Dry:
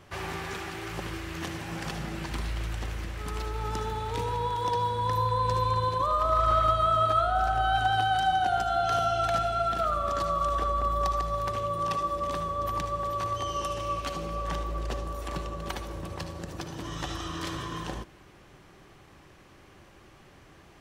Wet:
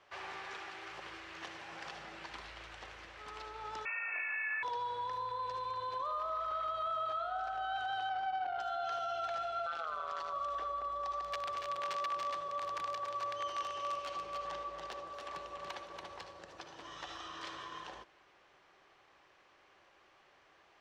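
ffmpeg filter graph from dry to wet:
-filter_complex "[0:a]asettb=1/sr,asplit=3[s0][s1][s2];[s0]atrim=end=3.854[s3];[s1]atrim=start=3.85:end=4.63,asetpts=PTS-STARTPTS,afade=t=in:d=0.004:c=qsin,afade=t=out:st=0.776:d=0.004:c=qsin,highshelf=f=2100:g=9.5,lowpass=f=2300:t=q:w=0.5098,lowpass=f=2300:t=q:w=0.6013,lowpass=f=2300:t=q:w=0.9,lowpass=f=2300:t=q:w=2.563,afreqshift=-2700[s4];[s2]atrim=start=4.626[s5];[s3][s4]acrossfade=d=0.004:c1=hsin:c2=qsin[s6];[s6][s5]acrossfade=d=0.004:c1=qsin:c2=hsin,asettb=1/sr,asplit=3[s7][s8][s9];[s7]atrim=end=8.094[s10];[s8]atrim=start=8.09:end=8.59,asetpts=PTS-STARTPTS,afade=t=in:d=0.004:c=qsin,afade=t=out:st=0.496:d=0.004:c=qsin,highshelf=f=3500:g=10,adynamicsmooth=sensitivity=0.5:basefreq=750[s11];[s9]atrim=start=8.586[s12];[s10][s11]acrossfade=d=0.004:c1=hsin:c2=qsin[s13];[s13][s12]acrossfade=d=0.004:c1=qsin:c2=hsin,asettb=1/sr,asplit=3[s14][s15][s16];[s14]atrim=end=9.664[s17];[s15]atrim=start=9.66:end=10.33,asetpts=PTS-STARTPTS,afade=t=in:d=0.004:c=qsin,afade=t=out:st=0.666:d=0.004:c=qsin,equalizer=f=3400:w=0.3:g=6.5,tremolo=f=160:d=0.889[s18];[s16]atrim=start=10.326[s19];[s17][s18]acrossfade=d=0.004:c1=hsin:c2=qsin[s20];[s20][s19]acrossfade=d=0.004:c1=qsin:c2=hsin,asettb=1/sr,asplit=3[s21][s22][s23];[s21]atrim=end=11.234[s24];[s22]atrim=start=11.23:end=16.3,asetpts=PTS-STARTPTS,afade=t=in:d=0.004:c=qsin,afade=t=out:st=5.066:d=0.004:c=qsin,aeval=exprs='(mod(11.9*val(0)+1,2)-1)/11.9':c=same,aecho=1:1:284:0.562,atrim=end_sample=223587[s25];[s23]atrim=start=16.296[s26];[s24][s25]acrossfade=d=0.004:c1=hsin:c2=qsin[s27];[s27][s26]acrossfade=d=0.004:c1=qsin:c2=hsin,equalizer=f=13000:w=0.43:g=-3.5,alimiter=limit=0.0794:level=0:latency=1:release=38,acrossover=split=450 6600:gain=0.1 1 0.0891[s28][s29][s30];[s28][s29][s30]amix=inputs=3:normalize=0,volume=0.447"

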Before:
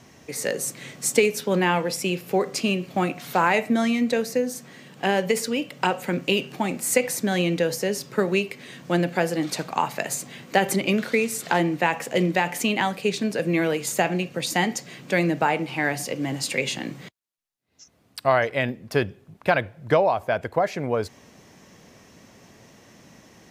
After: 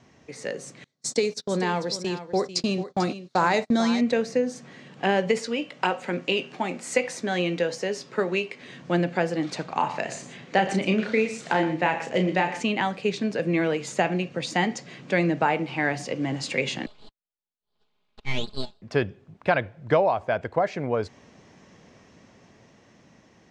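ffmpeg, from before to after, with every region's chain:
-filter_complex "[0:a]asettb=1/sr,asplit=3[s0][s1][s2];[s0]atrim=end=0.844[s3];[s1]atrim=start=0.84:end=4.01,asetpts=PTS-STARTPTS,afade=t=in:d=0.004:c=qsin,afade=t=out:st=3.166:d=0.004:c=qsin,agate=range=0.0251:threshold=0.0282:ratio=16:release=100:detection=peak,highshelf=f=3400:t=q:w=3:g=6,aecho=1:1:443:0.224,atrim=end_sample=139797[s4];[s2]atrim=start=4.006[s5];[s3][s4]acrossfade=d=0.004:c1=hsin:c2=qsin[s6];[s6][s5]acrossfade=d=0.004:c1=qsin:c2=hsin,asettb=1/sr,asplit=3[s7][s8][s9];[s7]atrim=end=5.394[s10];[s8]atrim=start=5.39:end=8.62,asetpts=PTS-STARTPTS,afade=t=in:d=0.004:c=qsin,afade=t=out:st=3.226:d=0.004:c=qsin,highpass=f=330:p=1,asplit=2[s11][s12];[s12]adelay=17,volume=0.237[s13];[s11][s13]amix=inputs=2:normalize=0,atrim=end_sample=142443[s14];[s9]atrim=start=8.616[s15];[s10][s14]acrossfade=d=0.004:c1=hsin:c2=qsin[s16];[s16][s15]acrossfade=d=0.004:c1=qsin:c2=hsin,asettb=1/sr,asplit=3[s17][s18][s19];[s17]atrim=end=9.664[s20];[s18]atrim=start=9.66:end=12.63,asetpts=PTS-STARTPTS,afade=t=in:d=0.004:c=qsin,afade=t=out:st=2.966:d=0.004:c=qsin,lowpass=9000,asplit=2[s21][s22];[s22]adelay=32,volume=0.447[s23];[s21][s23]amix=inputs=2:normalize=0,atrim=end_sample=130977,aecho=1:1:119:0.237,atrim=end_sample=130977[s24];[s19]atrim=start=12.626[s25];[s20][s24]acrossfade=d=0.004:c1=hsin:c2=qsin[s26];[s26][s25]acrossfade=d=0.004:c1=qsin:c2=hsin,asettb=1/sr,asplit=3[s27][s28][s29];[s27]atrim=end=16.864[s30];[s28]atrim=start=16.86:end=18.82,asetpts=PTS-STARTPTS,afade=t=in:d=0.004:c=qsin,afade=t=out:st=1.956:d=0.004:c=qsin,asuperpass=centerf=1600:order=12:qfactor=0.93,aeval=exprs='abs(val(0))':c=same,aecho=1:1:4.8:0.59,atrim=end_sample=86436[s31];[s29]atrim=start=18.816[s32];[s30][s31]acrossfade=d=0.004:c1=hsin:c2=qsin[s33];[s33][s32]acrossfade=d=0.004:c1=qsin:c2=hsin,lowpass=f=7800:w=0.5412,lowpass=f=7800:w=1.3066,highshelf=f=5300:g=-8.5,dynaudnorm=f=340:g=11:m=2.11,volume=0.562"

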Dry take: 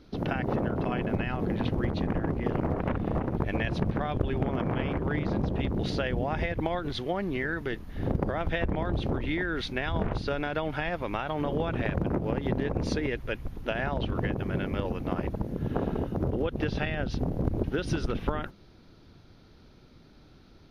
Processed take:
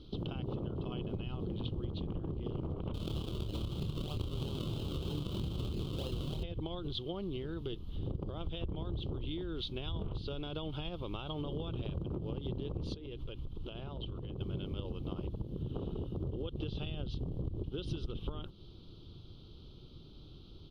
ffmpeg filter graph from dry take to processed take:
-filter_complex "[0:a]asettb=1/sr,asplit=3[s0][s1][s2];[s0]atrim=end=2.944[s3];[s1]atrim=start=2.94:end=6.43,asetpts=PTS-STARTPTS,afade=t=in:d=0.004:c=qsin,afade=t=out:st=3.486:d=0.004:c=qsin,acrusher=samples=37:mix=1:aa=0.000001:lfo=1:lforange=37:lforate=3.1,asplit=2[s4][s5];[s5]adelay=27,volume=0.501[s6];[s4][s6]amix=inputs=2:normalize=0,atrim=end_sample=153909[s7];[s2]atrim=start=6.426[s8];[s3][s7]acrossfade=d=0.004:c1=hsin:c2=qsin[s9];[s9][s8]acrossfade=d=0.004:c1=qsin:c2=hsin,asettb=1/sr,asplit=3[s10][s11][s12];[s10]atrim=end=12.944[s13];[s11]atrim=start=12.94:end=14.41,asetpts=PTS-STARTPTS,afade=t=in:d=0.004:c=qsin,afade=t=out:st=1.466:d=0.004:c=qsin,highshelf=f=6800:g=-7,bandreject=f=50:t=h:w=6,bandreject=f=100:t=h:w=6,bandreject=f=150:t=h:w=6,bandreject=f=200:t=h:w=6,bandreject=f=250:t=h:w=6,bandreject=f=300:t=h:w=6,acompressor=threshold=0.0178:ratio=12:attack=3.2:release=140:knee=1:detection=peak[s14];[s12]atrim=start=14.406[s15];[s13][s14]acrossfade=d=0.004:c1=hsin:c2=qsin[s16];[s16][s15]acrossfade=d=0.004:c1=qsin:c2=hsin,firequalizer=gain_entry='entry(130,0);entry(240,-8);entry(350,-2);entry(680,-13);entry(1200,-8);entry(1800,-30);entry(3100,5);entry(5700,-12)':delay=0.05:min_phase=1,acompressor=threshold=0.00794:ratio=3,volume=1.58"

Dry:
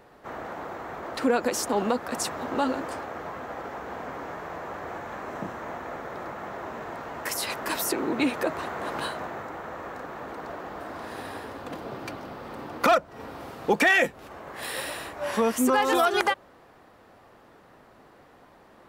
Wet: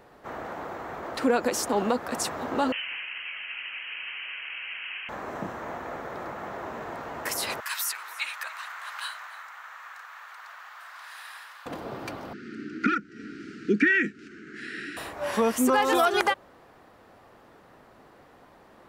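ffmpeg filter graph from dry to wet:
-filter_complex "[0:a]asettb=1/sr,asplit=3[s0][s1][s2];[s0]atrim=end=2.724[s3];[s1]atrim=start=2.72:end=5.09,asetpts=PTS-STARTPTS,afade=t=in:d=0.004:c=qsin,afade=t=out:st=2.366:d=0.004:c=qsin,lowshelf=f=190:g=-6.5,asoftclip=type=hard:threshold=0.0473,lowpass=f=2800:t=q:w=0.5098,lowpass=f=2800:t=q:w=0.6013,lowpass=f=2800:t=q:w=0.9,lowpass=f=2800:t=q:w=2.563,afreqshift=-3300[s4];[s2]atrim=start=5.086[s5];[s3][s4]acrossfade=d=0.004:c1=hsin:c2=qsin[s6];[s6][s5]acrossfade=d=0.004:c1=qsin:c2=hsin,asettb=1/sr,asplit=3[s7][s8][s9];[s7]atrim=end=7.604[s10];[s8]atrim=start=7.6:end=11.66,asetpts=PTS-STARTPTS,afade=t=in:d=0.004:c=qsin,afade=t=out:st=4.056:d=0.004:c=qsin,highpass=f=1200:w=0.5412,highpass=f=1200:w=1.3066,aecho=1:1:288:0.112,atrim=end_sample=179046[s11];[s9]atrim=start=11.656[s12];[s10][s11]acrossfade=d=0.004:c1=hsin:c2=qsin[s13];[s13][s12]acrossfade=d=0.004:c1=qsin:c2=hsin,asettb=1/sr,asplit=3[s14][s15][s16];[s14]atrim=end=12.334[s17];[s15]atrim=start=12.33:end=14.97,asetpts=PTS-STARTPTS,afade=t=in:d=0.004:c=qsin,afade=t=out:st=2.636:d=0.004:c=qsin,acrossover=split=2700[s18][s19];[s19]acompressor=threshold=0.00501:ratio=4:attack=1:release=60[s20];[s18][s20]amix=inputs=2:normalize=0,asuperstop=centerf=760:order=12:qfactor=0.76,highpass=170,equalizer=f=210:t=q:w=4:g=8,equalizer=f=310:t=q:w=4:g=6,equalizer=f=930:t=q:w=4:g=-9,equalizer=f=1400:t=q:w=4:g=5,equalizer=f=3500:t=q:w=4:g=-6,lowpass=f=7000:w=0.5412,lowpass=f=7000:w=1.3066[s21];[s16]atrim=start=14.966[s22];[s17][s21]acrossfade=d=0.004:c1=hsin:c2=qsin[s23];[s23][s22]acrossfade=d=0.004:c1=qsin:c2=hsin"

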